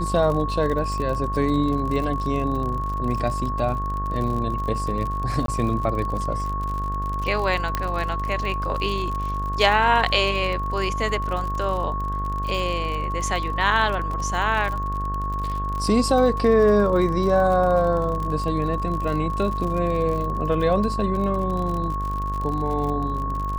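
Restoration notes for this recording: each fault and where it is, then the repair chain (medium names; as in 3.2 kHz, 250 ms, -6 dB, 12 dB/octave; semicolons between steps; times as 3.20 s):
buzz 50 Hz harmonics 38 -28 dBFS
crackle 51 per s -28 dBFS
whine 1.1 kHz -27 dBFS
5.46–5.48 s: dropout 22 ms
7.75 s: pop -9 dBFS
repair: de-click; de-hum 50 Hz, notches 38; band-stop 1.1 kHz, Q 30; interpolate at 5.46 s, 22 ms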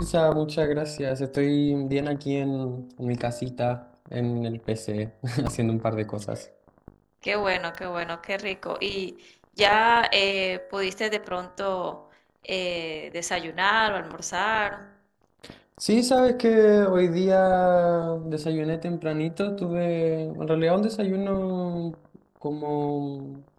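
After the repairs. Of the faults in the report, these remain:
7.75 s: pop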